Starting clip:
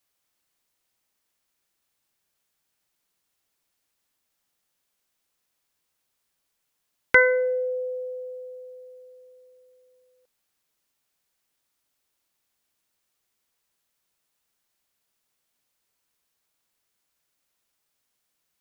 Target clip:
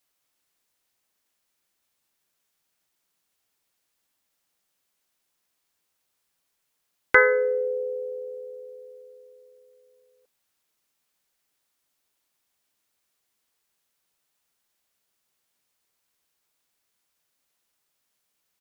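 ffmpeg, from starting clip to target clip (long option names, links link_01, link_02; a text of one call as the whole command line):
ffmpeg -i in.wav -filter_complex "[0:a]acrossover=split=2700[link_01][link_02];[link_02]acompressor=threshold=-35dB:ratio=4:attack=1:release=60[link_03];[link_01][link_03]amix=inputs=2:normalize=0,asplit=2[link_04][link_05];[link_05]asetrate=37084,aresample=44100,atempo=1.18921,volume=-7dB[link_06];[link_04][link_06]amix=inputs=2:normalize=0,lowshelf=frequency=140:gain=-3.5" out.wav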